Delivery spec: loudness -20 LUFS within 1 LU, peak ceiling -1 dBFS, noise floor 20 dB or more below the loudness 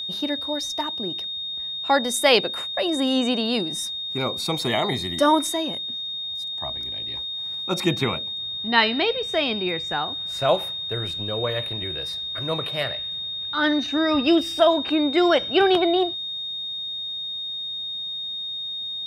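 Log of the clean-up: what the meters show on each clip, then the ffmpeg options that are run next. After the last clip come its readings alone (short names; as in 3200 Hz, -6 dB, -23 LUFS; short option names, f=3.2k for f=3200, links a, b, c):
steady tone 3700 Hz; tone level -28 dBFS; loudness -23.5 LUFS; peak -2.5 dBFS; loudness target -20.0 LUFS
-> -af "bandreject=f=3.7k:w=30"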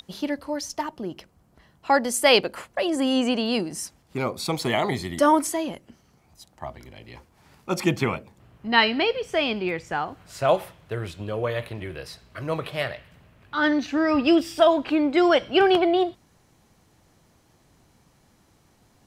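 steady tone none; loudness -23.5 LUFS; peak -2.5 dBFS; loudness target -20.0 LUFS
-> -af "volume=3.5dB,alimiter=limit=-1dB:level=0:latency=1"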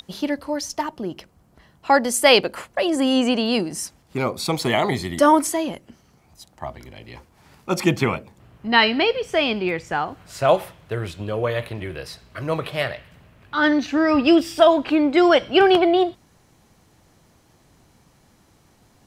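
loudness -20.0 LUFS; peak -1.0 dBFS; noise floor -58 dBFS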